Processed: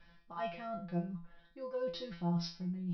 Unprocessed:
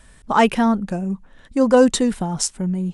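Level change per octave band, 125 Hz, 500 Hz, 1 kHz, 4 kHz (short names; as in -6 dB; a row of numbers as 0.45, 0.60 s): -11.5, -21.5, -22.5, -17.5 dB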